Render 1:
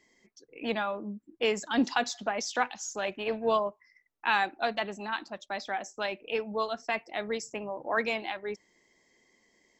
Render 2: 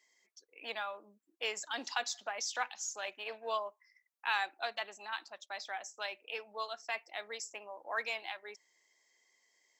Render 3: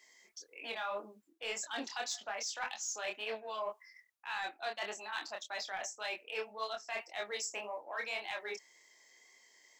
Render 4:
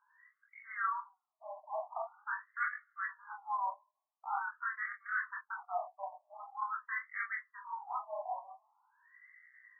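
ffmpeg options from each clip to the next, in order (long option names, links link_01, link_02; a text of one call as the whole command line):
ffmpeg -i in.wav -af "highpass=660,highshelf=frequency=3800:gain=7.5,volume=-7dB" out.wav
ffmpeg -i in.wav -af "areverse,acompressor=threshold=-44dB:ratio=8,areverse,asoftclip=type=tanh:threshold=-36dB,flanger=delay=22.5:depth=4.8:speed=1.8,volume=12dB" out.wav
ffmpeg -i in.wav -af "highpass=frequency=590:width_type=q:width=0.5412,highpass=frequency=590:width_type=q:width=1.307,lowpass=frequency=2200:width_type=q:width=0.5176,lowpass=frequency=2200:width_type=q:width=0.7071,lowpass=frequency=2200:width_type=q:width=1.932,afreqshift=-54,flanger=delay=17.5:depth=6.2:speed=0.31,afftfilt=real='re*between(b*sr/1024,790*pow(1600/790,0.5+0.5*sin(2*PI*0.45*pts/sr))/1.41,790*pow(1600/790,0.5+0.5*sin(2*PI*0.45*pts/sr))*1.41)':imag='im*between(b*sr/1024,790*pow(1600/790,0.5+0.5*sin(2*PI*0.45*pts/sr))/1.41,790*pow(1600/790,0.5+0.5*sin(2*PI*0.45*pts/sr))*1.41)':win_size=1024:overlap=0.75,volume=10.5dB" out.wav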